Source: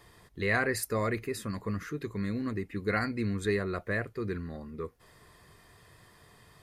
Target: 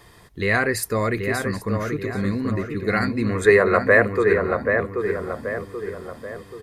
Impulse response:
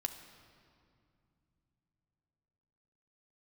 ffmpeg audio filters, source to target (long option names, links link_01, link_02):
-filter_complex "[0:a]asettb=1/sr,asplit=3[link_01][link_02][link_03];[link_01]atrim=end=3.294[link_04];[link_02]atrim=start=3.29:end=4.54,asetpts=PTS-STARTPTS,afade=type=in:duration=0.004:curve=qsin,afade=type=out:start_time=1.246:duration=0.004:curve=qsin,equalizer=frequency=125:width_type=o:width=1:gain=-4,equalizer=frequency=250:width_type=o:width=1:gain=-6,equalizer=frequency=500:width_type=o:width=1:gain=12,equalizer=frequency=1000:width_type=o:width=1:gain=9,equalizer=frequency=2000:width_type=o:width=1:gain=8,equalizer=frequency=4000:width_type=o:width=1:gain=-4,equalizer=frequency=8000:width_type=o:width=1:gain=4[link_05];[link_03]atrim=start=4.536[link_06];[link_04][link_05]acrossfade=duration=0.004:curve1=hsin:curve2=qsin[link_07];[link_07][link_06]acrossfade=duration=0.004:curve1=qsin:curve2=hsin,asplit=2[link_08][link_09];[link_09]adelay=782,lowpass=frequency=2000:poles=1,volume=-4.5dB,asplit=2[link_10][link_11];[link_11]adelay=782,lowpass=frequency=2000:poles=1,volume=0.49,asplit=2[link_12][link_13];[link_13]adelay=782,lowpass=frequency=2000:poles=1,volume=0.49,asplit=2[link_14][link_15];[link_15]adelay=782,lowpass=frequency=2000:poles=1,volume=0.49,asplit=2[link_16][link_17];[link_17]adelay=782,lowpass=frequency=2000:poles=1,volume=0.49,asplit=2[link_18][link_19];[link_19]adelay=782,lowpass=frequency=2000:poles=1,volume=0.49[link_20];[link_08][link_10][link_12][link_14][link_16][link_18][link_20]amix=inputs=7:normalize=0,volume=7.5dB"